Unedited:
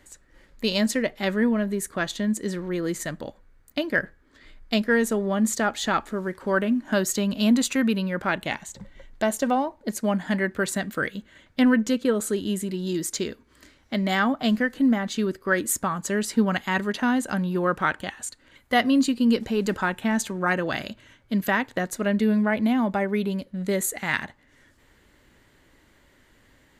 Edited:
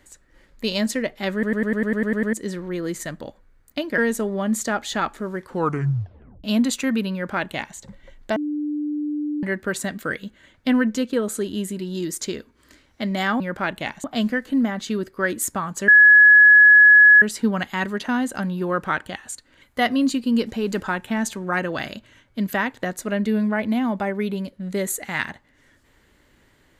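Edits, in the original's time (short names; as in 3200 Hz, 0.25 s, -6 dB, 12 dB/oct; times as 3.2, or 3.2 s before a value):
1.33 stutter in place 0.10 s, 10 plays
3.98–4.9 cut
6.4 tape stop 0.96 s
8.05–8.69 copy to 14.32
9.28–10.35 bleep 297 Hz -22.5 dBFS
16.16 add tone 1690 Hz -7 dBFS 1.34 s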